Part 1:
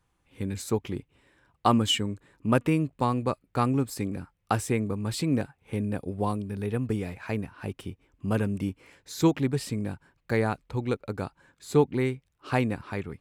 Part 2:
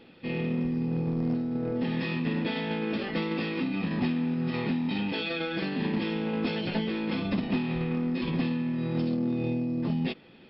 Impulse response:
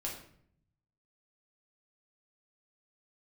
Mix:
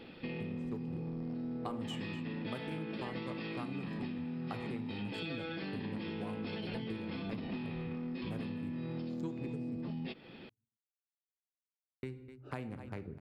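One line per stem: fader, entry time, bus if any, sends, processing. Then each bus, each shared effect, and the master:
-10.0 dB, 0.00 s, muted 9.77–12.03, send -6 dB, echo send -14 dB, Wiener smoothing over 41 samples; three-band squash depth 40%
+2.0 dB, 0.00 s, no send, no echo send, limiter -26.5 dBFS, peak gain reduction 5.5 dB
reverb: on, RT60 0.60 s, pre-delay 5 ms
echo: echo 0.252 s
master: compressor 3:1, threshold -40 dBFS, peak gain reduction 14 dB

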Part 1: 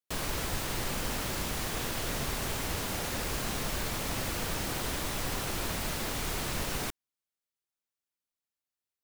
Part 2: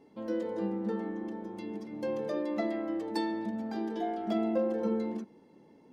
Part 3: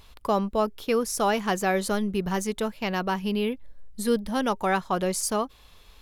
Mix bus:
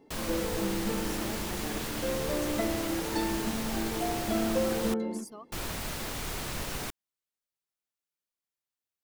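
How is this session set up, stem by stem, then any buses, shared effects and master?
-2.0 dB, 0.00 s, muted 4.94–5.52, no send, dry
+0.5 dB, 0.00 s, no send, dry
-11.5 dB, 0.00 s, no send, per-bin expansion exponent 2; limiter -26 dBFS, peak gain reduction 11.5 dB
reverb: off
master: dry

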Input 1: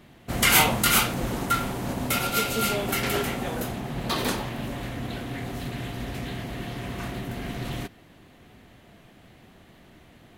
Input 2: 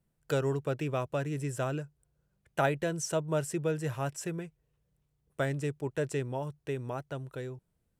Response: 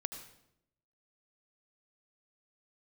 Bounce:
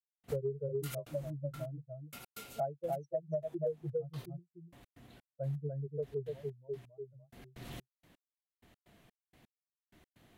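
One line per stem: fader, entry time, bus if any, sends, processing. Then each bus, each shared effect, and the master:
-12.0 dB, 0.00 s, no send, no echo send, step gate "..x....x.xx" 127 bpm -60 dB; auto duck -13 dB, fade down 0.75 s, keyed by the second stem
0.0 dB, 0.00 s, no send, echo send -5.5 dB, spectral expander 4:1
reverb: off
echo: echo 0.293 s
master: high shelf 5200 Hz +5.5 dB; compressor 10:1, threshold -32 dBFS, peak gain reduction 15.5 dB

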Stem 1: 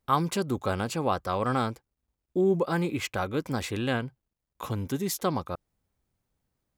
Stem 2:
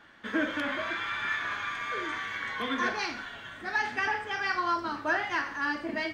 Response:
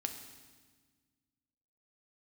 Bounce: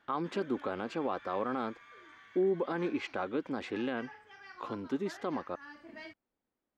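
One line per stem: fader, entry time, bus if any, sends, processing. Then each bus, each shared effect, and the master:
-4.5 dB, 0.00 s, no send, LPF 2900 Hz 12 dB/oct; resonant low shelf 180 Hz -12.5 dB, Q 1.5
-12.5 dB, 0.00 s, no send, auto duck -9 dB, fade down 0.50 s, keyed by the first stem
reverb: off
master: limiter -22.5 dBFS, peak gain reduction 8 dB

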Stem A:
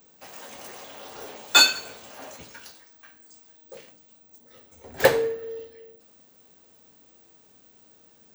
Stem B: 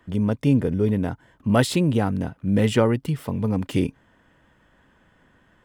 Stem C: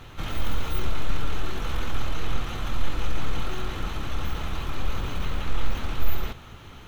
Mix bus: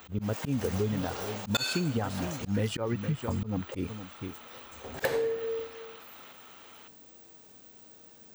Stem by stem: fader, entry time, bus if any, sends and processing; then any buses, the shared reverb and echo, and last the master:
+2.5 dB, 0.00 s, no send, no echo send, dry
-2.0 dB, 0.00 s, no send, echo send -15.5 dB, reverb removal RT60 1.6 s; low-pass opened by the level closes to 420 Hz, open at -18 dBFS; bell 75 Hz +8.5 dB 0.7 oct
-16.5 dB, 0.00 s, no send, no echo send, HPF 580 Hz 12 dB/oct; fast leveller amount 70%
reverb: off
echo: echo 0.465 s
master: auto swell 0.164 s; compressor 12:1, threshold -25 dBFS, peak gain reduction 13 dB

